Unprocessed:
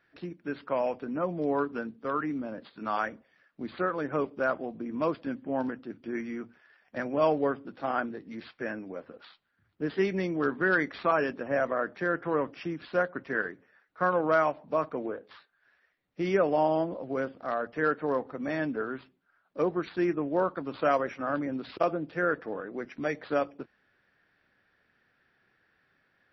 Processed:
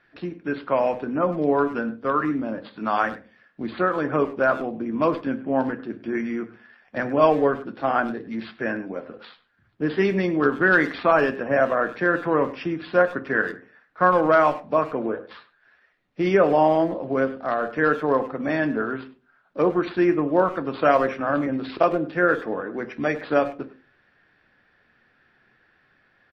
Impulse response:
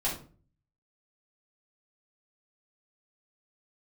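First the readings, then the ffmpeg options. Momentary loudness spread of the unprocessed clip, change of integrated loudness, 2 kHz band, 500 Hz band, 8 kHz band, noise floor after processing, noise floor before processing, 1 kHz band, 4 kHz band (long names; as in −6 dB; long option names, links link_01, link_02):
12 LU, +7.5 dB, +8.0 dB, +7.5 dB, can't be measured, −63 dBFS, −72 dBFS, +8.0 dB, +7.0 dB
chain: -filter_complex "[0:a]lowpass=5000,asplit=2[link_01][link_02];[link_02]adelay=100,highpass=300,lowpass=3400,asoftclip=type=hard:threshold=-24dB,volume=-15dB[link_03];[link_01][link_03]amix=inputs=2:normalize=0,asplit=2[link_04][link_05];[1:a]atrim=start_sample=2205,asetrate=66150,aresample=44100[link_06];[link_05][link_06]afir=irnorm=-1:irlink=0,volume=-12.5dB[link_07];[link_04][link_07]amix=inputs=2:normalize=0,volume=6.5dB"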